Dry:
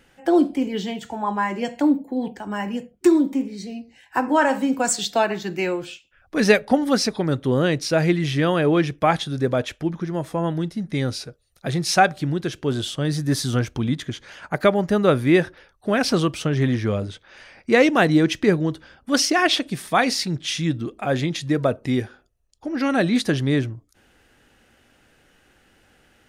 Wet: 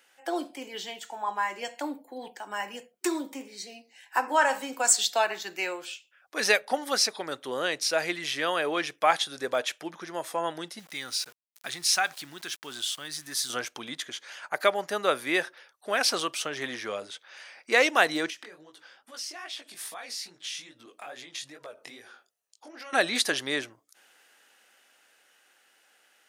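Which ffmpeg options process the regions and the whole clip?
-filter_complex "[0:a]asettb=1/sr,asplit=3[a][b][c];[a]atrim=end=10.794[d];[b]atrim=start=10.79:end=13.5,asetpts=PTS-STARTPTS,afade=t=in:d=0.004:c=qsin,afade=t=out:st=2.706:d=0.004:c=qsin,equalizer=f=520:t=o:w=1.1:g=-11.5,acompressor=threshold=-31dB:ratio=1.5:attack=3.2:release=140:knee=1:detection=peak,aeval=exprs='val(0)*gte(abs(val(0)),0.00531)':c=same[e];[c]atrim=start=13.496[f];[d][e]acrossfade=d=0.004:c1=hsin:c2=qsin[g];[g][f]acrossfade=d=0.004:c1=qsin:c2=hsin,asettb=1/sr,asplit=3[h][i][j];[h]atrim=end=18.304[k];[i]atrim=start=18.3:end=22.93,asetpts=PTS-STARTPTS,afade=t=in:d=0.004:c=qsin,afade=t=out:st=4.626:d=0.004:c=qsin,acompressor=threshold=-31dB:ratio=12:attack=3.2:release=140:knee=1:detection=peak,flanger=delay=16:depth=7.2:speed=2.4[l];[j]atrim=start=22.926[m];[k][l]acrossfade=d=0.004:c1=hsin:c2=qsin[n];[n][m]acrossfade=d=0.004:c1=qsin:c2=hsin,highshelf=f=4.6k:g=7,dynaudnorm=f=240:g=21:m=11.5dB,highpass=660,volume=-5dB"

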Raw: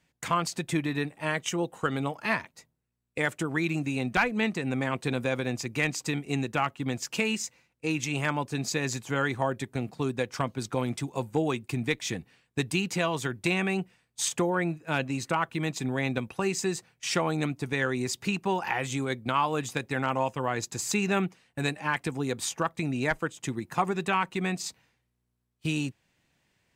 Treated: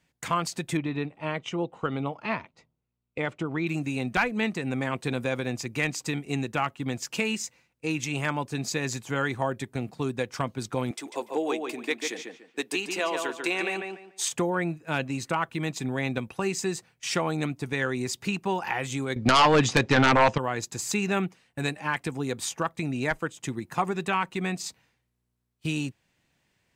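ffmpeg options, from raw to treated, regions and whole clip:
-filter_complex "[0:a]asettb=1/sr,asplit=3[a][b][c];[a]atrim=end=0.774[d];[b]atrim=start=0.77:end=3.67,asetpts=PTS-STARTPTS,afade=t=in:d=0.004:c=qsin,afade=t=out:st=2.896:d=0.004:c=qsin,lowpass=3.2k,equalizer=f=1.7k:t=o:w=0.32:g=-9[e];[c]atrim=start=3.666[f];[d][e]acrossfade=d=0.004:c1=hsin:c2=qsin[g];[g][f]acrossfade=d=0.004:c1=qsin:c2=hsin,asettb=1/sr,asplit=3[h][i][j];[h]atrim=end=10.914[k];[i]atrim=start=10.91:end=14.3,asetpts=PTS-STARTPTS,afade=t=in:d=0.004:c=qsin,afade=t=out:st=3.386:d=0.004:c=qsin,highpass=f=300:w=0.5412,highpass=f=300:w=1.3066,asplit=2[l][m];[m]adelay=145,lowpass=f=3.2k:p=1,volume=-4dB,asplit=2[n][o];[o]adelay=145,lowpass=f=3.2k:p=1,volume=0.27,asplit=2[p][q];[q]adelay=145,lowpass=f=3.2k:p=1,volume=0.27,asplit=2[r][s];[s]adelay=145,lowpass=f=3.2k:p=1,volume=0.27[t];[l][n][p][r][t]amix=inputs=5:normalize=0,atrim=end_sample=149499[u];[j]atrim=start=14.296[v];[k][u]acrossfade=d=0.004:c1=hsin:c2=qsin[w];[w][v]acrossfade=d=0.004:c1=qsin:c2=hsin,asettb=1/sr,asplit=3[x][y][z];[x]atrim=end=19.164[aa];[y]atrim=start=19.16:end=20.38,asetpts=PTS-STARTPTS,afade=t=in:d=0.004:c=qsin,afade=t=out:st=1.216:d=0.004:c=qsin,lowpass=f=6.2k:w=0.5412,lowpass=f=6.2k:w=1.3066,aeval=exprs='0.211*sin(PI/2*2.82*val(0)/0.211)':c=same[ab];[z]atrim=start=20.376[ac];[aa][ab]acrossfade=d=0.004:c1=hsin:c2=qsin[ad];[ad][ac]acrossfade=d=0.004:c1=qsin:c2=hsin"

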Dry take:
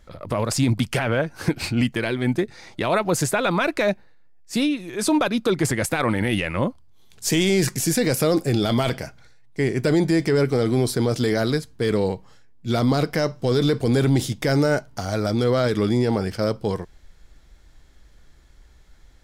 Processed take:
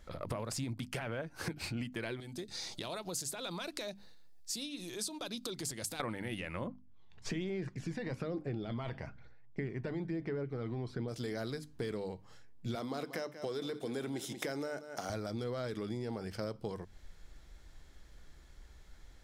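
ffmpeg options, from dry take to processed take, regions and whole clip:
-filter_complex "[0:a]asettb=1/sr,asplit=3[a][b][c];[a]atrim=end=2.204[d];[b]atrim=start=2.2:end=6,asetpts=PTS-STARTPTS,afade=t=in:d=0.004:c=qsin,afade=t=out:st=3.796:d=0.004:c=qsin,acompressor=threshold=-41dB:ratio=2.5:attack=3.2:release=140:knee=1:detection=peak,highshelf=f=2.9k:t=q:w=1.5:g=10[e];[c]atrim=start=5.996[f];[d][e]acrossfade=d=0.004:c1=hsin:c2=qsin[g];[g][f]acrossfade=d=0.004:c1=qsin:c2=hsin,asettb=1/sr,asplit=3[h][i][j];[h]atrim=end=6.674[k];[i]atrim=start=6.67:end=11.08,asetpts=PTS-STARTPTS,afade=t=in:d=0.004:c=qsin,afade=t=out:st=4.406:d=0.004:c=qsin,lowpass=2.5k,agate=range=-33dB:threshold=-45dB:ratio=3:release=100:detection=peak,aphaser=in_gain=1:out_gain=1:delay=1.1:decay=0.4:speed=1.1:type=sinusoidal[l];[j]atrim=start=11.076[m];[k][l]acrossfade=d=0.004:c1=hsin:c2=qsin[n];[n][m]acrossfade=d=0.004:c1=qsin:c2=hsin,asettb=1/sr,asplit=3[o][p][q];[o]atrim=end=12.754[r];[p]atrim=start=12.75:end=15.1,asetpts=PTS-STARTPTS,afade=t=in:d=0.004:c=qsin,afade=t=out:st=2.346:d=0.004:c=qsin,highpass=250,bandreject=f=4.6k:w=10,aecho=1:1:185:0.168,atrim=end_sample=103635[s];[q]atrim=start=15.096[t];[r][s]acrossfade=d=0.004:c1=hsin:c2=qsin[u];[u][t]acrossfade=d=0.004:c1=qsin:c2=hsin,acompressor=threshold=-32dB:ratio=8,bandreject=f=50:t=h:w=6,bandreject=f=100:t=h:w=6,bandreject=f=150:t=h:w=6,bandreject=f=200:t=h:w=6,bandreject=f=250:t=h:w=6,bandreject=f=300:t=h:w=6,volume=-3.5dB"

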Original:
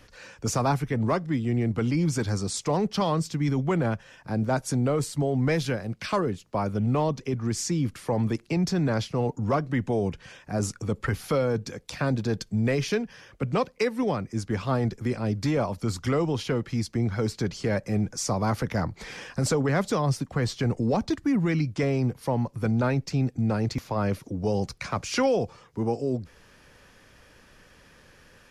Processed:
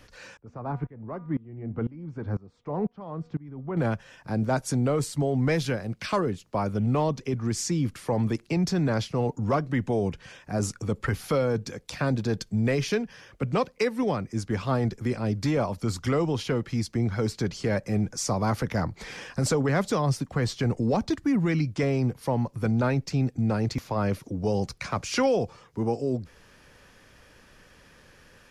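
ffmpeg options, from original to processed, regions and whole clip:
-filter_complex "[0:a]asettb=1/sr,asplit=3[a][b][c];[a]atrim=end=0.374[d];[b]atrim=start=0.37:end=3.77,asetpts=PTS-STARTPTS,afade=t=in:d=0.004:c=qsin,afade=t=out:st=3.396:d=0.004:c=qsin,lowpass=1.3k,bandreject=f=240.6:t=h:w=4,bandreject=f=481.2:t=h:w=4,bandreject=f=721.8:t=h:w=4,bandreject=f=962.4:t=h:w=4,bandreject=f=1.203k:t=h:w=4,bandreject=f=1.4436k:t=h:w=4,bandreject=f=1.6842k:t=h:w=4,bandreject=f=1.9248k:t=h:w=4,bandreject=f=2.1654k:t=h:w=4,bandreject=f=2.406k:t=h:w=4,bandreject=f=2.6466k:t=h:w=4,bandreject=f=2.8872k:t=h:w=4,bandreject=f=3.1278k:t=h:w=4,bandreject=f=3.3684k:t=h:w=4,bandreject=f=3.609k:t=h:w=4,bandreject=f=3.8496k:t=h:w=4,aeval=exprs='val(0)*pow(10,-22*if(lt(mod(-2*n/s,1),2*abs(-2)/1000),1-mod(-2*n/s,1)/(2*abs(-2)/1000),(mod(-2*n/s,1)-2*abs(-2)/1000)/(1-2*abs(-2)/1000))/20)':c=same[e];[c]atrim=start=3.766[f];[d][e]acrossfade=d=0.004:c1=hsin:c2=qsin[g];[g][f]acrossfade=d=0.004:c1=qsin:c2=hsin"

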